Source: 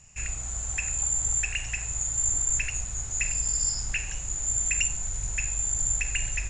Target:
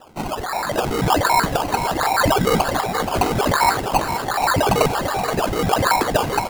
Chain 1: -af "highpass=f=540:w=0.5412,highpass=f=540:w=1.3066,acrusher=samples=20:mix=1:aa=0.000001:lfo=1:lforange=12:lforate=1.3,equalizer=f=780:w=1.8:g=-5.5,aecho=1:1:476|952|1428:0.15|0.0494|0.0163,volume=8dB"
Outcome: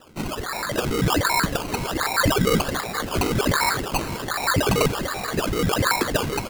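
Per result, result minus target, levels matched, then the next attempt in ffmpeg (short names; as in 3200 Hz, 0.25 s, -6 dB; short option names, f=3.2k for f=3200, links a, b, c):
echo-to-direct -7.5 dB; 1000 Hz band -4.0 dB
-af "highpass=f=540:w=0.5412,highpass=f=540:w=1.3066,acrusher=samples=20:mix=1:aa=0.000001:lfo=1:lforange=12:lforate=1.3,equalizer=f=780:w=1.8:g=-5.5,aecho=1:1:476|952|1428|1904:0.355|0.117|0.0386|0.0128,volume=8dB"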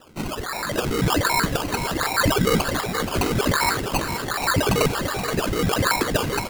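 1000 Hz band -4.0 dB
-af "highpass=f=540:w=0.5412,highpass=f=540:w=1.3066,acrusher=samples=20:mix=1:aa=0.000001:lfo=1:lforange=12:lforate=1.3,equalizer=f=780:w=1.8:g=5.5,aecho=1:1:476|952|1428|1904:0.355|0.117|0.0386|0.0128,volume=8dB"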